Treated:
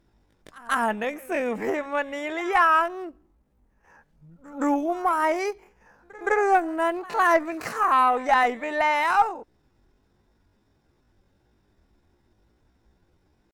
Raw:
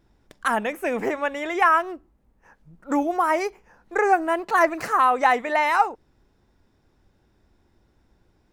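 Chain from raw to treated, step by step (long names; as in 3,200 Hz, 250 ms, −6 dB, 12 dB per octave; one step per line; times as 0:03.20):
harmonic generator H 4 −27 dB, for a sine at −5 dBFS
echo ahead of the sound 103 ms −22 dB
tempo change 0.63×
level −1.5 dB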